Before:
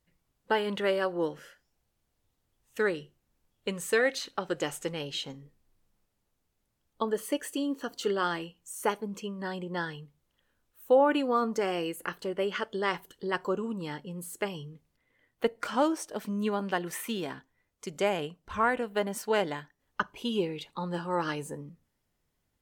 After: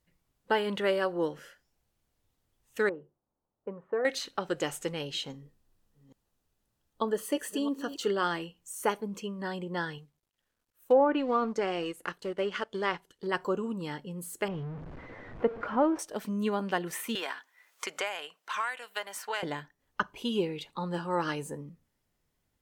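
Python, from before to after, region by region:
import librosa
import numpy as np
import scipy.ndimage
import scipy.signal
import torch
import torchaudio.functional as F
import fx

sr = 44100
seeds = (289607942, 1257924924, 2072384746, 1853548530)

y = fx.chain(x, sr, fx.lowpass(hz=1000.0, slope=24),
    fx.tilt_eq(slope=3.5), at=(2.89, 4.05))
y = fx.chain(y, sr, fx.reverse_delay(ms=408, wet_db=-12.5),
    fx.notch(hz=2200.0, q=11.0), at=(5.31, 7.97))
y = fx.chain(y, sr, fx.law_mismatch(coded='A'),
    fx.env_lowpass_down(base_hz=1300.0, full_db=-18.5), at=(9.98, 13.27))
y = fx.chain(y, sr, fx.zero_step(step_db=-36.0),
    fx.lowpass(hz=1300.0, slope=12), at=(14.48, 15.99))
y = fx.chain(y, sr, fx.highpass(hz=1100.0, slope=12),
    fx.band_squash(depth_pct=100), at=(17.15, 19.43))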